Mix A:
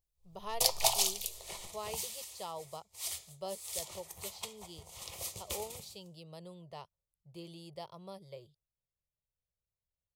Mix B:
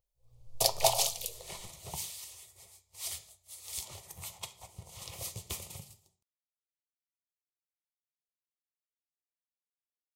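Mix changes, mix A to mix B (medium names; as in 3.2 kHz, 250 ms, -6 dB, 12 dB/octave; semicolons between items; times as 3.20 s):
speech: muted; first sound: add peaking EQ 530 Hz +12 dB 0.72 oct; master: add peaking EQ 120 Hz +9 dB 1.1 oct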